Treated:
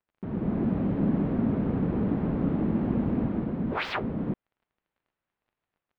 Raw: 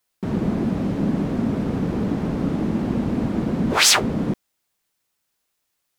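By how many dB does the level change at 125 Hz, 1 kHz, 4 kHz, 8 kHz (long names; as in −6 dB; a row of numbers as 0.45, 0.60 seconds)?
−4.0 dB, −8.0 dB, −21.5 dB, below −40 dB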